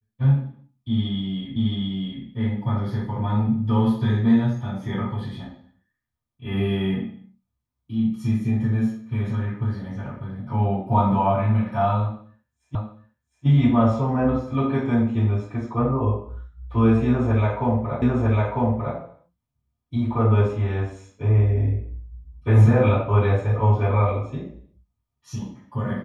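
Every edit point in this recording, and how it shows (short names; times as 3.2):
1.56 repeat of the last 0.67 s
12.75 repeat of the last 0.71 s
18.02 repeat of the last 0.95 s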